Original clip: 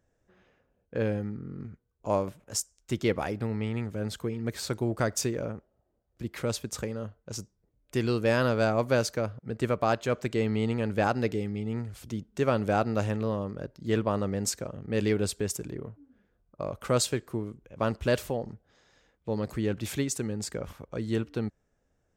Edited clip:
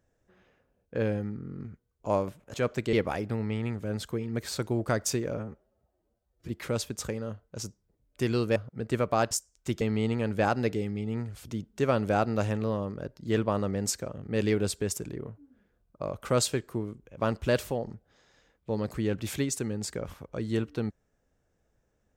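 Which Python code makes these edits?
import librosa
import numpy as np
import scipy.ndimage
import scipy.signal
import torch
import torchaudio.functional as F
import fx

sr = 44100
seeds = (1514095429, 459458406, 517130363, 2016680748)

y = fx.edit(x, sr, fx.swap(start_s=2.54, length_s=0.5, other_s=10.01, other_length_s=0.39),
    fx.stretch_span(start_s=5.48, length_s=0.74, factor=1.5),
    fx.cut(start_s=8.3, length_s=0.96), tone=tone)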